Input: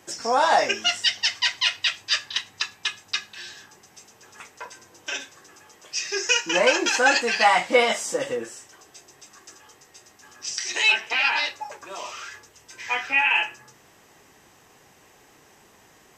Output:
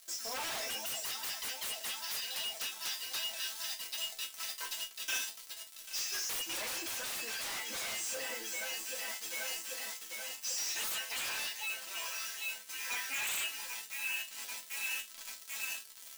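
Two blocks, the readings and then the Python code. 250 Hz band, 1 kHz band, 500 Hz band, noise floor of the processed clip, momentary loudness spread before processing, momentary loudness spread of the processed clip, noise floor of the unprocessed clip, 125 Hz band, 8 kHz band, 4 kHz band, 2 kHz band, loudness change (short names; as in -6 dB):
-20.0 dB, -21.5 dB, -22.5 dB, -52 dBFS, 19 LU, 6 LU, -55 dBFS, -14.0 dB, -4.5 dB, -11.5 dB, -15.5 dB, -14.5 dB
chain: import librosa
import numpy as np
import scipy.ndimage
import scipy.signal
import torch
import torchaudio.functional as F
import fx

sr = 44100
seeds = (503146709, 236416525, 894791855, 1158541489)

y = fx.echo_alternate(x, sr, ms=394, hz=850.0, feedback_pct=83, wet_db=-11.5)
y = fx.dmg_crackle(y, sr, seeds[0], per_s=140.0, level_db=-32.0)
y = fx.quant_dither(y, sr, seeds[1], bits=6, dither='none')
y = fx.high_shelf(y, sr, hz=2900.0, db=10.5)
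y = fx.resonator_bank(y, sr, root=57, chord='minor', decay_s=0.22)
y = 10.0 ** (-34.0 / 20.0) * (np.abs((y / 10.0 ** (-34.0 / 20.0) + 3.0) % 4.0 - 2.0) - 1.0)
y = fx.rider(y, sr, range_db=5, speed_s=2.0)
y = fx.low_shelf(y, sr, hz=350.0, db=-9.0)
y = y * 10.0 ** (2.5 / 20.0)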